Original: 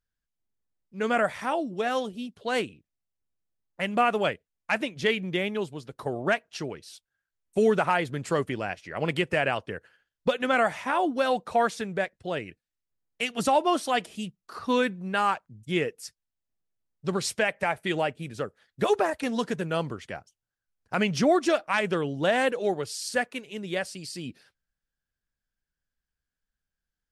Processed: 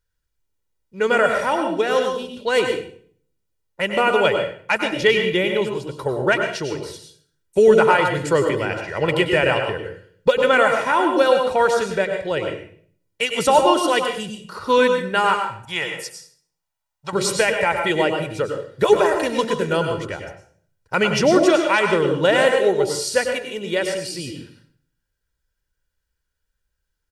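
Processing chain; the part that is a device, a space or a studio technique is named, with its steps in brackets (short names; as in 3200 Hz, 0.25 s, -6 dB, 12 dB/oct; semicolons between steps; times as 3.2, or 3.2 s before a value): microphone above a desk (comb 2.1 ms, depth 54%; reverb RT60 0.55 s, pre-delay 93 ms, DRR 4.5 dB); 15.65–17.13 resonant low shelf 570 Hz -10.5 dB, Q 3; gain +6 dB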